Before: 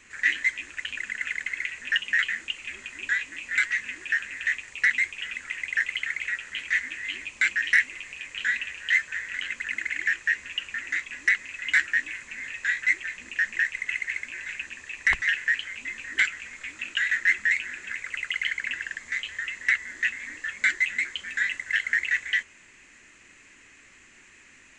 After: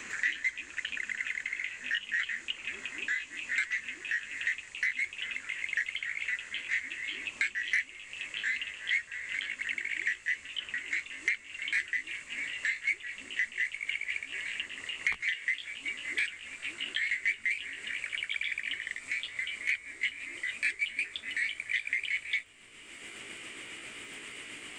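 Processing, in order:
pitch glide at a constant tempo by +2.5 semitones starting unshifted
surface crackle 17 per second −56 dBFS
multiband upward and downward compressor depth 70%
level −5.5 dB

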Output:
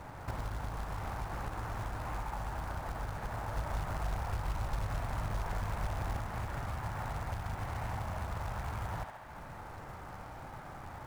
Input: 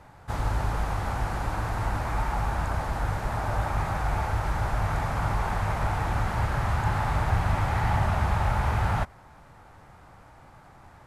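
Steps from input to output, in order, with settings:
high-shelf EQ 4,700 Hz −11.5 dB
feedback echo with a high-pass in the loop 69 ms, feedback 52%, high-pass 370 Hz, level −5 dB
downward compressor 6 to 1, threshold −41 dBFS, peak gain reduction 20.5 dB
0:03.55–0:06.17: low-shelf EQ 83 Hz +6.5 dB
floating-point word with a short mantissa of 2 bits
highs frequency-modulated by the lows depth 0.84 ms
level +4.5 dB

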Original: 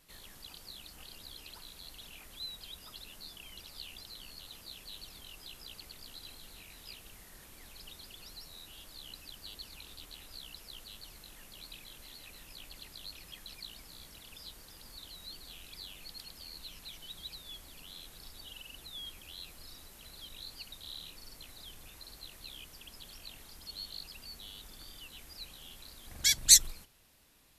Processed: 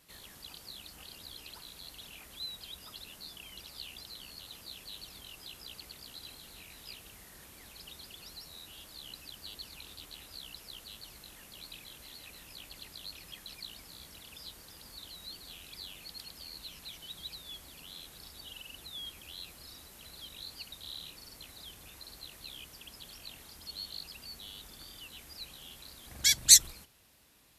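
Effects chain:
high-pass filter 49 Hz
level +1.5 dB

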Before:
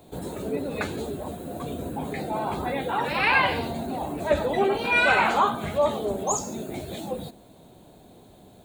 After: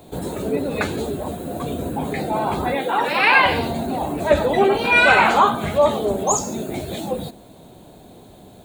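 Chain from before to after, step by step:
0:02.75–0:03.46: high-pass filter 250 Hz 12 dB per octave
level +6.5 dB

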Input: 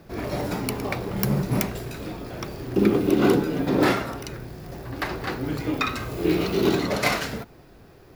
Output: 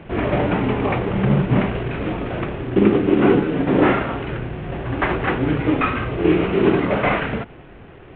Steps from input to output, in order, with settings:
variable-slope delta modulation 16 kbit/s
in parallel at +2 dB: speech leveller within 5 dB 0.5 s

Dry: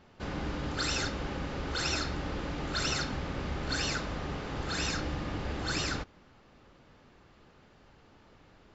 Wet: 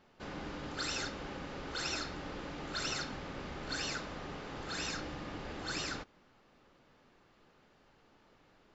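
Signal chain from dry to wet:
parametric band 63 Hz −9 dB 2.3 octaves
level −5 dB

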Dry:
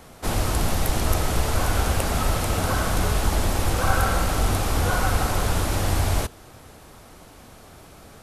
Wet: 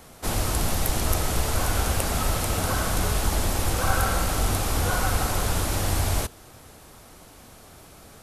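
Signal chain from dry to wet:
high-shelf EQ 4,700 Hz +5.5 dB
level −2.5 dB

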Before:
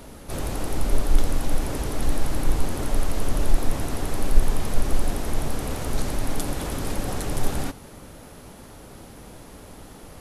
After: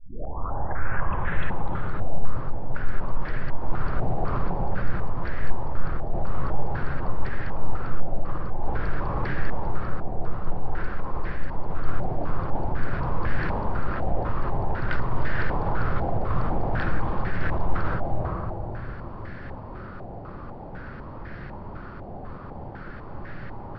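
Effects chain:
turntable start at the beginning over 0.83 s
reversed playback
downward compressor, threshold −21 dBFS, peak gain reduction 14.5 dB
reversed playback
comb and all-pass reverb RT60 1.5 s, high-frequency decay 0.5×, pre-delay 85 ms, DRR −0.5 dB
change of speed 0.429×
dynamic equaliser 260 Hz, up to −8 dB, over −49 dBFS, Q 2.5
in parallel at −9.5 dB: hard clipping −24 dBFS, distortion −6 dB
on the sum: low-pass on a step sequencer 4 Hz 740–1,700 Hz

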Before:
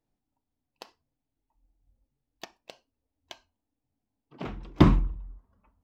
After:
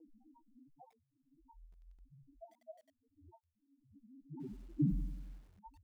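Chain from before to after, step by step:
low-shelf EQ 88 Hz −11.5 dB
mains-hum notches 60/120/180/240/300 Hz
upward compression, threshold −29 dBFS
spectral peaks only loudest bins 1
flanger 1.4 Hz, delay 6 ms, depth 4.3 ms, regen +26%
Chebyshev low-pass with heavy ripple 950 Hz, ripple 3 dB
feedback echo at a low word length 93 ms, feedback 55%, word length 11 bits, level −13 dB
level +7.5 dB

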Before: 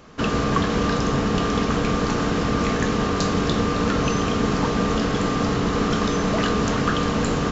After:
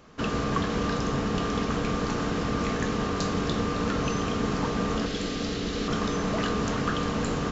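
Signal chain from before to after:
0:05.06–0:05.88: octave-band graphic EQ 125/1,000/4,000 Hz −7/−10/+6 dB
level −6 dB

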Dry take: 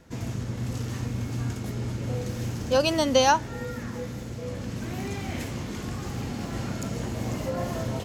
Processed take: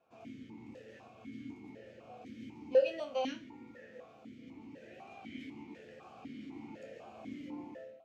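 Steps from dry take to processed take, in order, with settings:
fade-out on the ending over 0.51 s
resonators tuned to a chord D2 minor, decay 0.31 s
formant filter that steps through the vowels 4 Hz
level +8 dB

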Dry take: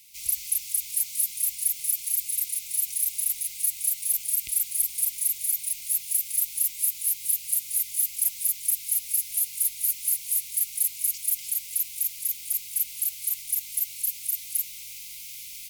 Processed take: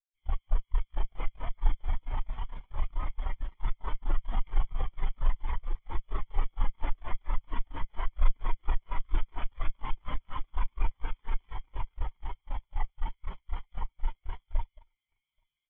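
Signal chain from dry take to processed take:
lower of the sound and its delayed copy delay 0.94 ms
elliptic low-pass filter 3,400 Hz, stop band 40 dB
multi-tap delay 222/831 ms −9.5/−15.5 dB
in parallel at −9.5 dB: log-companded quantiser 2 bits
on the sum: every bin expanded away from the loudest bin 2.5 to 1
level +4.5 dB

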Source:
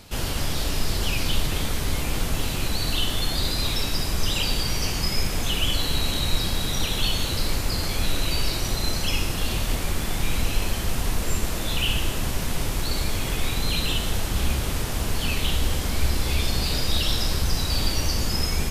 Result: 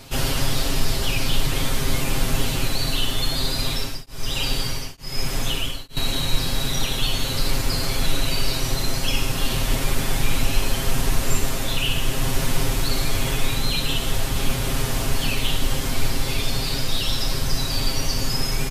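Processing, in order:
speech leveller 0.5 s
comb filter 7.5 ms, depth 79%
0:03.61–0:05.97: tremolo along a rectified sine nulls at 1.1 Hz

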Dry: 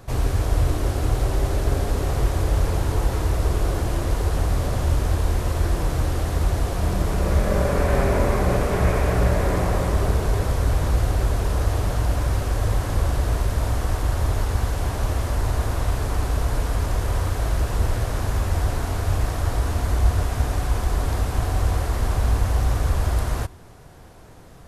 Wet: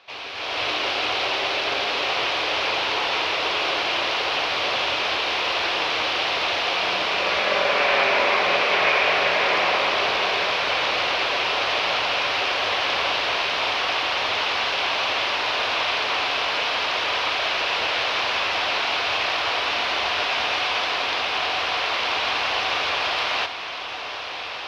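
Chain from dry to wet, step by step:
high-pass filter 870 Hz 12 dB per octave
flat-topped bell 3,800 Hz +15.5 dB
automatic gain control gain up to 12 dB
high-frequency loss of the air 370 metres
feedback delay with all-pass diffusion 1,329 ms, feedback 73%, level −11 dB

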